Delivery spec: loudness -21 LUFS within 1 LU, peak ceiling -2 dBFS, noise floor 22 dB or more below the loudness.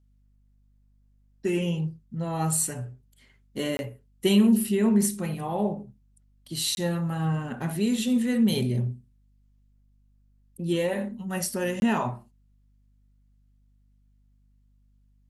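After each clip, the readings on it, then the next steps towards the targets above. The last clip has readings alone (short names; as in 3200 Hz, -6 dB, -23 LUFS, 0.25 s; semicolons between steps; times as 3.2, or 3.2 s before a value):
dropouts 3; longest dropout 21 ms; hum 50 Hz; harmonics up to 250 Hz; hum level -47 dBFS; loudness -26.5 LUFS; peak -10.5 dBFS; loudness target -21.0 LUFS
-> interpolate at 3.77/6.75/11.8, 21 ms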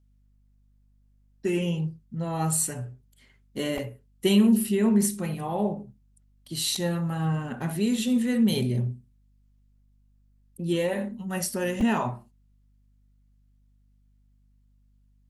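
dropouts 0; hum 50 Hz; harmonics up to 250 Hz; hum level -47 dBFS
-> de-hum 50 Hz, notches 5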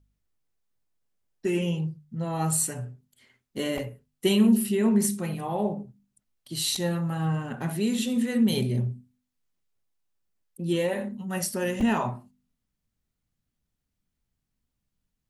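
hum none; loudness -27.0 LUFS; peak -10.0 dBFS; loudness target -21.0 LUFS
-> gain +6 dB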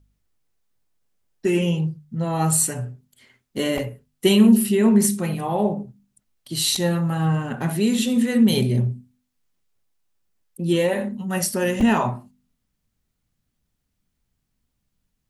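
loudness -21.0 LUFS; peak -4.0 dBFS; noise floor -76 dBFS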